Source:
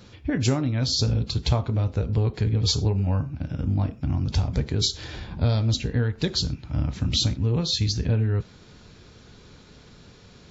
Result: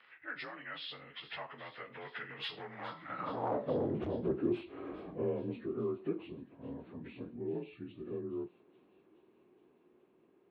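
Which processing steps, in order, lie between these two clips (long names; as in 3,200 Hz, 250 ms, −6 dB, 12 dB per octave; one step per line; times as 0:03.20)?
partials spread apart or drawn together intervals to 87%
source passing by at 0:03.59, 31 m/s, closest 5.7 metres
parametric band 95 Hz −6.5 dB 1 octave
in parallel at −1 dB: downward compressor, threshold −49 dBFS, peak gain reduction 21 dB
on the sum: gain into a clipping stage and back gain 35 dB
dynamic equaliser 2,600 Hz, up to −6 dB, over −60 dBFS, Q 1.1
mid-hump overdrive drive 12 dB, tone 2,000 Hz, clips at −34.5 dBFS
band-pass filter sweep 1,800 Hz → 350 Hz, 0:02.98–0:03.95
delay with a high-pass on its return 420 ms, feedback 66%, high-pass 3,100 Hz, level −12.5 dB
level +17.5 dB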